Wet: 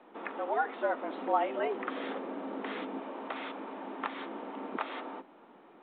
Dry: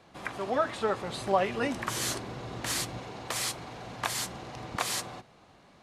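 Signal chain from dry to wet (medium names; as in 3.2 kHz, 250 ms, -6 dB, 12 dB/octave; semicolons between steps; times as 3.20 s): low-pass 1 kHz 6 dB/octave; in parallel at -3 dB: compression 6:1, threshold -40 dBFS, peak gain reduction 17 dB; on the sum: frequency shift +150 Hz; trim -2 dB; µ-law 64 kbps 8 kHz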